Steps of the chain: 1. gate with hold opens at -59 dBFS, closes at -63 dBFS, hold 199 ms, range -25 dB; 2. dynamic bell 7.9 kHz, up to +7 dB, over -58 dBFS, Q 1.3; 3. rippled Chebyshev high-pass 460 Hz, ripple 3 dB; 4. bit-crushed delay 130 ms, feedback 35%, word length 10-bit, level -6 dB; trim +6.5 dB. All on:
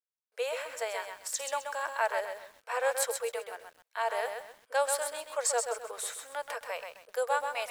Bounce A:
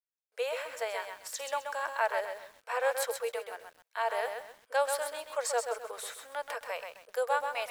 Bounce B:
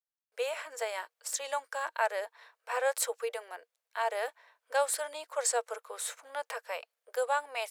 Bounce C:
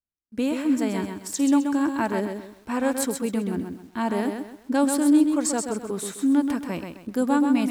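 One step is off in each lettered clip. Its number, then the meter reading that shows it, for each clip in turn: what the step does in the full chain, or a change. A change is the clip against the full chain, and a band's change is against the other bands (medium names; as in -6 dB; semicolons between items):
2, 8 kHz band -6.0 dB; 4, momentary loudness spread change +1 LU; 3, crest factor change -6.0 dB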